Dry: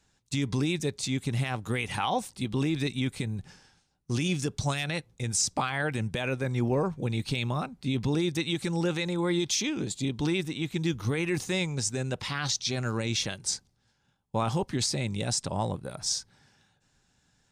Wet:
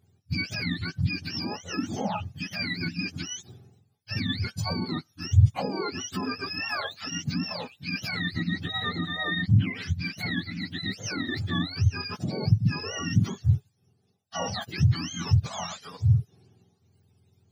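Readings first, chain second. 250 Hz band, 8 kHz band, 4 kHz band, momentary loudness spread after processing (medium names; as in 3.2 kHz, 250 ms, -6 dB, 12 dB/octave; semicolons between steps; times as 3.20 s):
-1.5 dB, -8.5 dB, 0.0 dB, 9 LU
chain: spectrum inverted on a logarithmic axis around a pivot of 800 Hz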